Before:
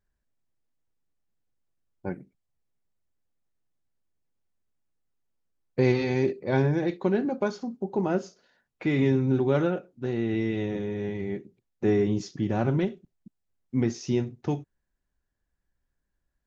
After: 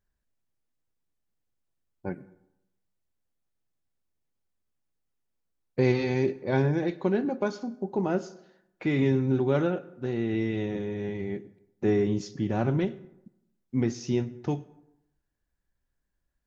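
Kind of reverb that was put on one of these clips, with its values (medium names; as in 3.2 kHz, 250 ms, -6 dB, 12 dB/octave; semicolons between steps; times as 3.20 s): plate-style reverb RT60 0.86 s, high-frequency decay 0.55×, pre-delay 80 ms, DRR 20 dB; trim -1 dB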